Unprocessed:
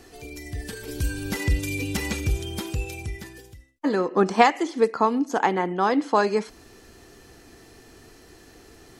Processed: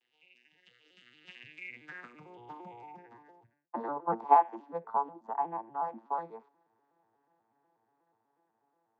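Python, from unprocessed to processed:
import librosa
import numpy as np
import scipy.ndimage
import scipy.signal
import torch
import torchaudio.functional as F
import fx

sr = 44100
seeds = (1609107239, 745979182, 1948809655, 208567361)

y = fx.vocoder_arp(x, sr, chord='major triad', root=46, every_ms=117)
y = fx.doppler_pass(y, sr, speed_mps=14, closest_m=13.0, pass_at_s=3.36)
y = fx.filter_sweep_bandpass(y, sr, from_hz=2900.0, to_hz=910.0, start_s=1.41, end_s=2.37, q=6.4)
y = y * 10.0 ** (8.0 / 20.0)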